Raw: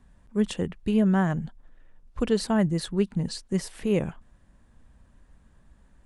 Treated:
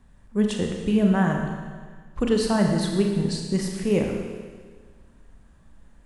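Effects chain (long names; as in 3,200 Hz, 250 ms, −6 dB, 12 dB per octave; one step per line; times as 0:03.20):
four-comb reverb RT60 1.6 s, combs from 27 ms, DRR 1.5 dB
level +1.5 dB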